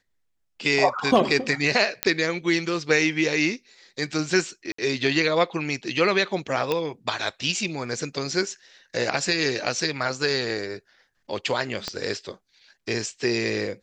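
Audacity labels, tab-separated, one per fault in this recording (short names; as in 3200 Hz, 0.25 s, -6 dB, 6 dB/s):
2.030000	2.030000	pop -3 dBFS
4.720000	4.780000	gap 64 ms
6.720000	6.720000	pop -11 dBFS
11.880000	11.880000	pop -13 dBFS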